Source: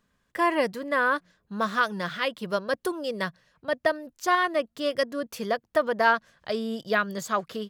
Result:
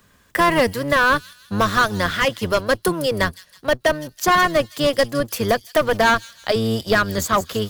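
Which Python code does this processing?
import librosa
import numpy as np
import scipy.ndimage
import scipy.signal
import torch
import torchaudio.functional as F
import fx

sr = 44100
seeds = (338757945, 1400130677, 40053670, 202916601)

p1 = fx.octave_divider(x, sr, octaves=1, level_db=-1.0)
p2 = fx.low_shelf(p1, sr, hz=400.0, db=-4.5)
p3 = fx.schmitt(p2, sr, flips_db=-20.5)
p4 = p2 + F.gain(torch.from_numpy(p3), -8.5).numpy()
p5 = fx.leveller(p4, sr, passes=1)
p6 = fx.high_shelf(p5, sr, hz=10000.0, db=9.5)
p7 = np.clip(10.0 ** (17.0 / 20.0) * p6, -1.0, 1.0) / 10.0 ** (17.0 / 20.0)
p8 = p7 + fx.echo_wet_highpass(p7, sr, ms=161, feedback_pct=37, hz=4900.0, wet_db=-10.0, dry=0)
p9 = fx.band_squash(p8, sr, depth_pct=40)
y = F.gain(torch.from_numpy(p9), 6.0).numpy()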